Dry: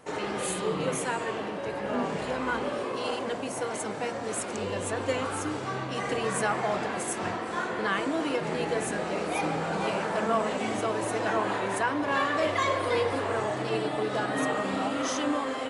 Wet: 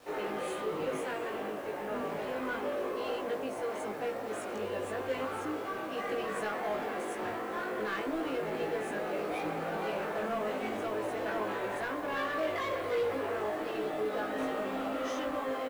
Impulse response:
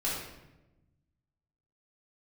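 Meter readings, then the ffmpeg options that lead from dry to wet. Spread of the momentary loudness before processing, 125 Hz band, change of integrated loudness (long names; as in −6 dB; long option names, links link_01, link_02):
5 LU, −11.5 dB, −5.5 dB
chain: -filter_complex "[0:a]bass=frequency=250:gain=-15,treble=frequency=4000:gain=-13,bandreject=frequency=950:width=24,acrossover=split=520|1400[link_01][link_02][link_03];[link_01]acontrast=34[link_04];[link_02]alimiter=level_in=6.5dB:limit=-24dB:level=0:latency=1,volume=-6.5dB[link_05];[link_04][link_05][link_03]amix=inputs=3:normalize=0,acrusher=bits=7:mode=log:mix=0:aa=0.000001,asoftclip=type=tanh:threshold=-25dB,acrusher=bits=8:mix=0:aa=0.000001,asplit=2[link_06][link_07];[link_07]adelay=19,volume=-2dB[link_08];[link_06][link_08]amix=inputs=2:normalize=0,volume=-5dB"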